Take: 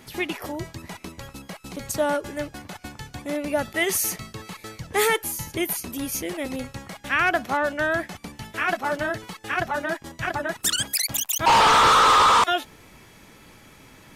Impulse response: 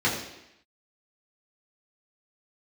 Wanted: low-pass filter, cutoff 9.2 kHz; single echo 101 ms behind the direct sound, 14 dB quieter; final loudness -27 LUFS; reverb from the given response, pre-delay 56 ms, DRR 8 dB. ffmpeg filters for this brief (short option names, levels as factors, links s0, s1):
-filter_complex "[0:a]lowpass=9200,aecho=1:1:101:0.2,asplit=2[s0][s1];[1:a]atrim=start_sample=2205,adelay=56[s2];[s1][s2]afir=irnorm=-1:irlink=0,volume=0.0794[s3];[s0][s3]amix=inputs=2:normalize=0,volume=0.562"